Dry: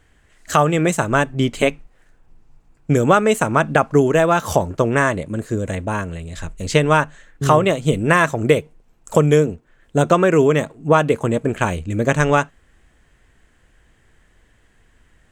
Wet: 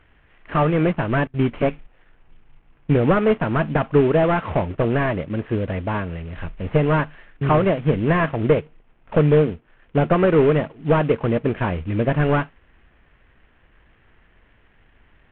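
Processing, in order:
variable-slope delta modulation 16 kbit/s
0:01.27–0:01.67: noise gate with hold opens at −26 dBFS

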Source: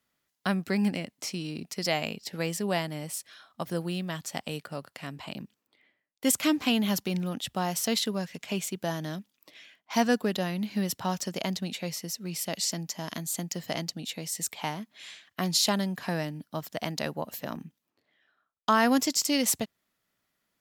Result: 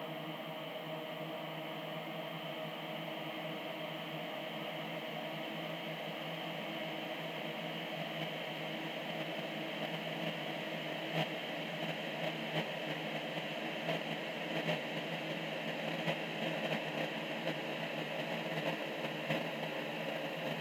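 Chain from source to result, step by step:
extreme stretch with random phases 45×, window 1.00 s, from 0:16.62
noise gate −31 dBFS, range −9 dB
Butterworth high-pass 160 Hz
high shelf with overshoot 3,800 Hz −8 dB, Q 3
level +2 dB

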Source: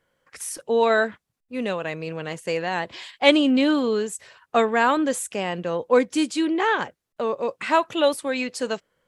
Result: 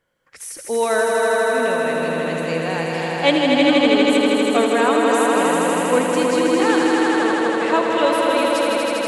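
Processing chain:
echo that builds up and dies away 80 ms, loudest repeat 5, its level −4 dB
level −1 dB

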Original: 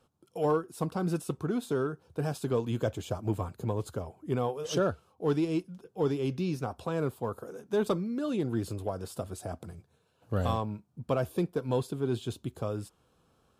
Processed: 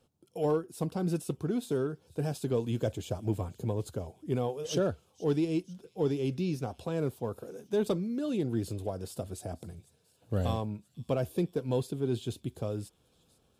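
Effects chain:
parametric band 1,200 Hz −8.5 dB 0.97 octaves
on a send: delay with a high-pass on its return 491 ms, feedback 69%, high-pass 3,700 Hz, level −19.5 dB

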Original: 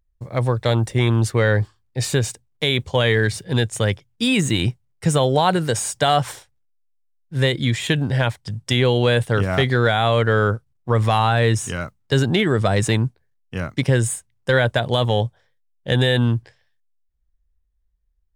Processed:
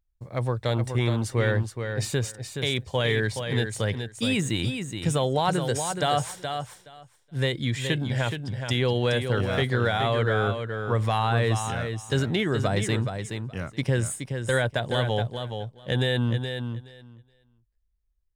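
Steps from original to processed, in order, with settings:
repeating echo 422 ms, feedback 15%, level −7 dB
level −7 dB

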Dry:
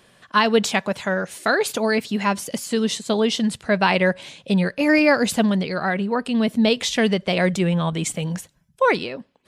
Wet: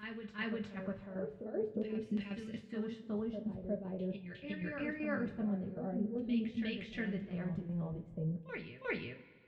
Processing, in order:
guitar amp tone stack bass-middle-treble 10-0-1
brickwall limiter −35 dBFS, peak gain reduction 8.5 dB
square-wave tremolo 2.6 Hz, depth 65%, duty 75%
auto-filter low-pass saw down 0.46 Hz 340–3,100 Hz
backwards echo 358 ms −6.5 dB
coupled-rooms reverb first 0.24 s, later 1.8 s, from −19 dB, DRR 1 dB
level +3 dB

